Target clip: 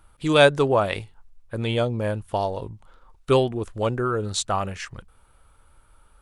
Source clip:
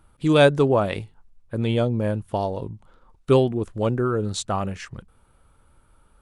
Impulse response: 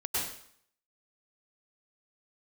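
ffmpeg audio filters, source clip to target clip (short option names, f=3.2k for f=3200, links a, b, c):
-af "equalizer=f=200:w=0.5:g=-8.5,volume=3.5dB"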